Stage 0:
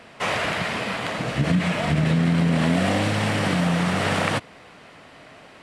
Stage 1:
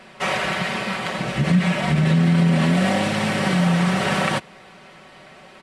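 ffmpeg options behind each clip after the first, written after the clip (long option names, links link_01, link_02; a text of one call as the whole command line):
ffmpeg -i in.wav -af "aecho=1:1:5.3:0.66" out.wav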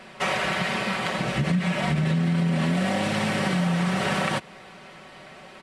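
ffmpeg -i in.wav -af "acompressor=threshold=-22dB:ratio=3" out.wav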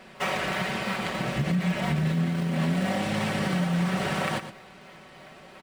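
ffmpeg -i in.wav -filter_complex "[0:a]asplit=2[link_01][link_02];[link_02]acrusher=samples=20:mix=1:aa=0.000001:lfo=1:lforange=32:lforate=3,volume=-11dB[link_03];[link_01][link_03]amix=inputs=2:normalize=0,aecho=1:1:116:0.282,volume=-4.5dB" out.wav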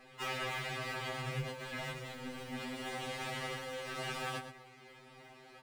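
ffmpeg -i in.wav -filter_complex "[0:a]acrossover=split=1700[link_01][link_02];[link_01]asoftclip=type=hard:threshold=-29.5dB[link_03];[link_03][link_02]amix=inputs=2:normalize=0,afftfilt=real='re*2.45*eq(mod(b,6),0)':imag='im*2.45*eq(mod(b,6),0)':win_size=2048:overlap=0.75,volume=-5.5dB" out.wav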